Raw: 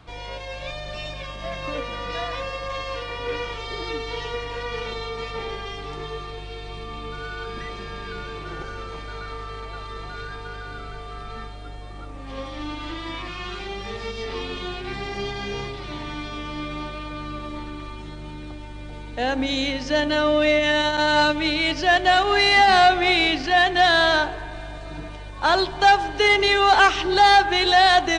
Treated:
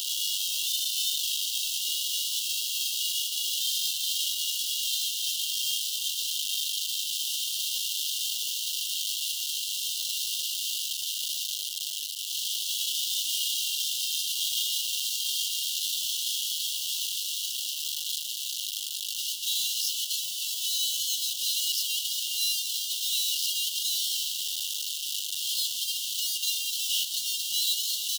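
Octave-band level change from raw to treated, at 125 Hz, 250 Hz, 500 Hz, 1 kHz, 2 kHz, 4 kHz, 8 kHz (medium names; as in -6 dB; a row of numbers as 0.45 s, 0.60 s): under -40 dB, under -40 dB, under -40 dB, under -40 dB, -20.0 dB, +0.5 dB, +14.5 dB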